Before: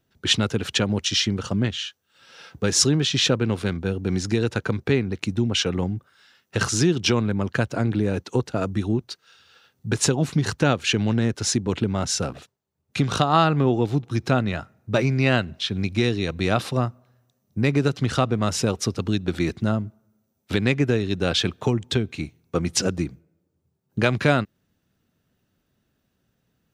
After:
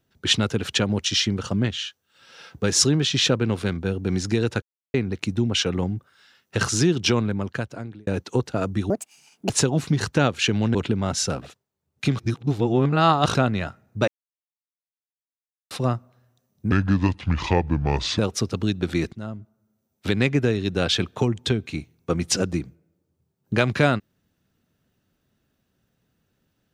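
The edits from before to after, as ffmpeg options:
-filter_complex "[0:a]asplit=14[a][b][c][d][e][f][g][h][i][j][k][l][m][n];[a]atrim=end=4.62,asetpts=PTS-STARTPTS,afade=t=out:st=4.616:d=0.004:c=hsin[o];[b]atrim=start=4.62:end=4.94,asetpts=PTS-STARTPTS,volume=0[p];[c]atrim=start=4.94:end=8.07,asetpts=PTS-STARTPTS,afade=t=in:d=0.004:c=hsin,afade=t=out:st=2.24:d=0.89[q];[d]atrim=start=8.07:end=8.904,asetpts=PTS-STARTPTS,afade=t=in:d=0.004:c=hsin[r];[e]atrim=start=8.9:end=9.95,asetpts=PTS-STARTPTS,asetrate=77616,aresample=44100[s];[f]atrim=start=9.946:end=11.202[t];[g]atrim=start=11.668:end=13.112[u];[h]atrim=start=13.108:end=14.272,asetpts=PTS-STARTPTS,areverse[v];[i]atrim=start=14.268:end=15,asetpts=PTS-STARTPTS,afade=t=out:st=0.728:d=0.004:c=hsin[w];[j]atrim=start=15:end=16.63,asetpts=PTS-STARTPTS,volume=0[x];[k]atrim=start=16.63:end=17.644,asetpts=PTS-STARTPTS,afade=t=in:d=0.004:c=hsin[y];[l]atrim=start=17.64:end=18.64,asetpts=PTS-STARTPTS,asetrate=29988,aresample=44100[z];[m]atrim=start=18.636:end=19.58,asetpts=PTS-STARTPTS,afade=t=out:st=0.94:d=0.004:c=hsin:silence=0.188365[aa];[n]atrim=start=19.58,asetpts=PTS-STARTPTS,afade=t=in:d=1.01:silence=0.188365[ab];[o][p][q][r]concat=n=4:v=0:a=1[ac];[ac][s]acrossfade=d=0.004:c1=hsin:c2=hsin[ad];[ad][t]acrossfade=d=0.004:c1=hsin:c2=hsin[ae];[ae][u]acrossfade=d=0.004:c1=hsin:c2=hsin[af];[af][v]acrossfade=d=0.004:c1=hsin:c2=hsin[ag];[w][x][y]concat=n=3:v=0:a=1[ah];[ag][ah]acrossfade=d=0.004:c1=hsin:c2=hsin[ai];[ai][z]acrossfade=d=0.004:c1=hsin:c2=hsin[aj];[aa][ab]concat=n=2:v=0:a=1[ak];[aj][ak]acrossfade=d=0.004:c1=hsin:c2=hsin"

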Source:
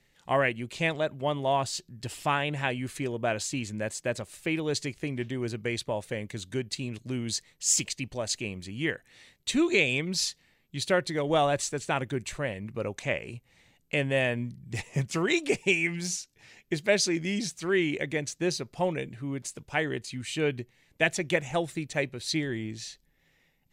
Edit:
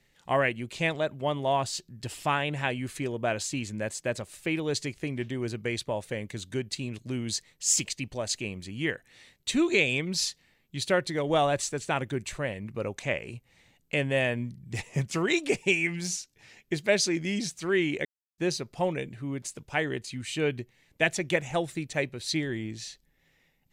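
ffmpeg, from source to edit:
-filter_complex "[0:a]asplit=3[a][b][c];[a]atrim=end=18.05,asetpts=PTS-STARTPTS,afade=t=out:st=18.046:d=0.004:c=hsin[d];[b]atrim=start=18.05:end=18.38,asetpts=PTS-STARTPTS,volume=0[e];[c]atrim=start=18.38,asetpts=PTS-STARTPTS,afade=t=in:d=0.004:c=hsin[f];[d][e][f]concat=n=3:v=0:a=1"

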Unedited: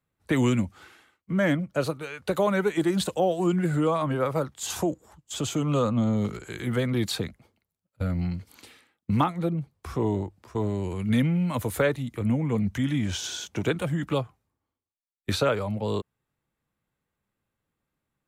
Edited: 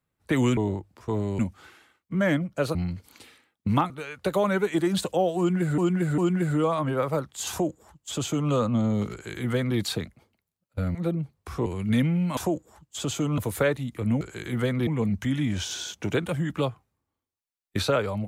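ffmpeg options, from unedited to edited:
-filter_complex "[0:a]asplit=13[a][b][c][d][e][f][g][h][i][j][k][l][m];[a]atrim=end=0.572[n];[b]atrim=start=10.038:end=10.862[o];[c]atrim=start=0.568:end=1.932[p];[d]atrim=start=8.178:end=9.332[q];[e]atrim=start=1.928:end=3.812[r];[f]atrim=start=3.408:end=3.812[s];[g]atrim=start=3.408:end=8.182[t];[h]atrim=start=9.328:end=10.042[u];[i]atrim=start=10.858:end=11.572[v];[j]atrim=start=4.728:end=5.742[w];[k]atrim=start=11.568:end=12.402[x];[l]atrim=start=6.348:end=7.012[y];[m]atrim=start=12.398[z];[n][o]acrossfade=d=0.004:c1=hsin:c2=hsin[aa];[aa][p]acrossfade=d=0.004:c1=hsin:c2=hsin[ab];[ab][q]acrossfade=d=0.004:c1=hsin:c2=hsin[ac];[ac][r]acrossfade=d=0.004:c1=hsin:c2=hsin[ad];[ad][s]acrossfade=d=0.004:c1=hsin:c2=hsin[ae];[ae][t]acrossfade=d=0.004:c1=hsin:c2=hsin[af];[af][u]acrossfade=d=0.004:c1=hsin:c2=hsin[ag];[ag][v]acrossfade=d=0.004:c1=hsin:c2=hsin[ah];[ah][w]acrossfade=d=0.004:c1=hsin:c2=hsin[ai];[ai][x]acrossfade=d=0.004:c1=hsin:c2=hsin[aj];[aj][y]acrossfade=d=0.004:c1=hsin:c2=hsin[ak];[ak][z]acrossfade=d=0.004:c1=hsin:c2=hsin"

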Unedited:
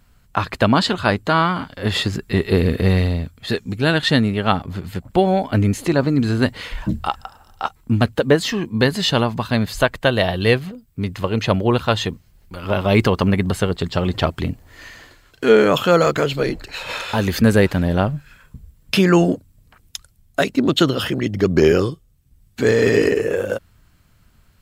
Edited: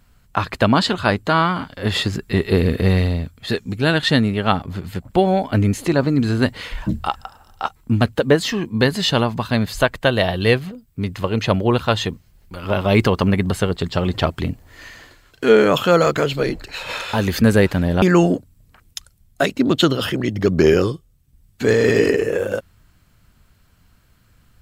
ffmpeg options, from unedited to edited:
-filter_complex "[0:a]asplit=2[a][b];[a]atrim=end=18.022[c];[b]atrim=start=18.998[d];[c][d]acrossfade=d=0.004:c1=hsin:c2=hsin"

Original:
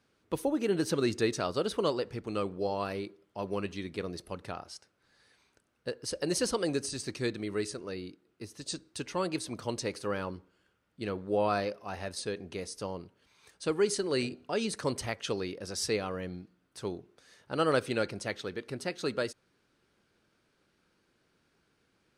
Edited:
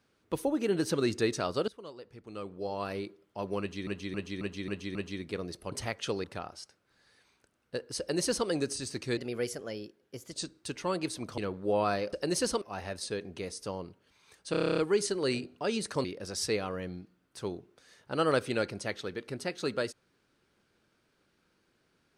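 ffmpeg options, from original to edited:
-filter_complex "[0:a]asplit=24[a][b][c][d][e][f][g][h][i][j][k][l][m][n][o][p][q][r][s][t][u][v][w][x];[a]atrim=end=1.68,asetpts=PTS-STARTPTS,afade=t=out:st=1.676:d=0.004:c=hsin:silence=0.125893[y];[b]atrim=start=1.68:end=3.872,asetpts=PTS-STARTPTS,afade=t=in:d=1.29:c=qua:silence=0.125893[z];[c]atrim=start=3.598:end=3.872[aa];[d]atrim=start=3.598:end=3.872[ab];[e]atrim=start=3.598:end=3.872[ac];[f]atrim=start=3.598:end=3.872[ad];[g]atrim=start=3.598:end=4.372[ae];[h]atrim=start=14.928:end=15.452[af];[i]atrim=start=4.368:end=7.304[ag];[j]atrim=start=7.3:end=8.63,asetpts=PTS-STARTPTS,asetrate=50715,aresample=44100[ah];[k]atrim=start=8.626:end=9.682[ai];[l]atrim=start=11.018:end=11.772[aj];[m]atrim=start=6.118:end=6.612[ak];[n]atrim=start=11.768:end=13.692[al];[o]atrim=start=13.658:end=13.692[am];[p]atrim=start=13.658:end=13.692[an];[q]atrim=start=13.658:end=13.692[ao];[r]atrim=start=13.658:end=13.692[ap];[s]atrim=start=13.658:end=13.692[aq];[t]atrim=start=13.658:end=13.692[ar];[u]atrim=start=13.658:end=13.692[as];[v]atrim=start=13.658:end=13.692[at];[w]atrim=start=13.658:end=14.932[au];[x]atrim=start=15.448[av];[y][z]concat=n=2:v=0:a=1[aw];[aw][aa]acrossfade=d=0.004:c1=hsin:c2=hsin[ax];[ax][ab]acrossfade=d=0.004:c1=hsin:c2=hsin[ay];[ay][ac]acrossfade=d=0.004:c1=hsin:c2=hsin[az];[az][ad]acrossfade=d=0.004:c1=hsin:c2=hsin[ba];[ba][ae]acrossfade=d=0.004:c1=hsin:c2=hsin[bb];[bb][af]acrossfade=d=0.004:c1=hsin:c2=hsin[bc];[bc][ag]acrossfade=d=0.004:c1=hsin:c2=hsin[bd];[bd][ah]acrossfade=d=0.004:c1=hsin:c2=hsin[be];[be][ai]acrossfade=d=0.004:c1=hsin:c2=hsin[bf];[bf][aj]acrossfade=d=0.004:c1=hsin:c2=hsin[bg];[bg][ak]acrossfade=d=0.004:c1=hsin:c2=hsin[bh];[bh][al]acrossfade=d=0.004:c1=hsin:c2=hsin[bi];[bi][am]acrossfade=d=0.004:c1=hsin:c2=hsin[bj];[bj][an]acrossfade=d=0.004:c1=hsin:c2=hsin[bk];[bk][ao]acrossfade=d=0.004:c1=hsin:c2=hsin[bl];[bl][ap]acrossfade=d=0.004:c1=hsin:c2=hsin[bm];[bm][aq]acrossfade=d=0.004:c1=hsin:c2=hsin[bn];[bn][ar]acrossfade=d=0.004:c1=hsin:c2=hsin[bo];[bo][as]acrossfade=d=0.004:c1=hsin:c2=hsin[bp];[bp][at]acrossfade=d=0.004:c1=hsin:c2=hsin[bq];[bq][au]acrossfade=d=0.004:c1=hsin:c2=hsin[br];[br][av]acrossfade=d=0.004:c1=hsin:c2=hsin"

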